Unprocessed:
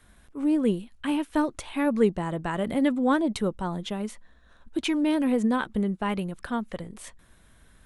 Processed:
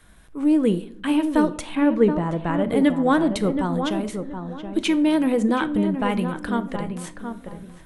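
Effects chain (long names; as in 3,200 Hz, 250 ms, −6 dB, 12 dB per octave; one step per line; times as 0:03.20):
0:01.75–0:02.71: low-pass filter 1,900 Hz 6 dB per octave
feedback echo with a low-pass in the loop 724 ms, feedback 28%, low-pass 1,500 Hz, level −7 dB
rectangular room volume 860 cubic metres, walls furnished, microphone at 0.6 metres
level +4 dB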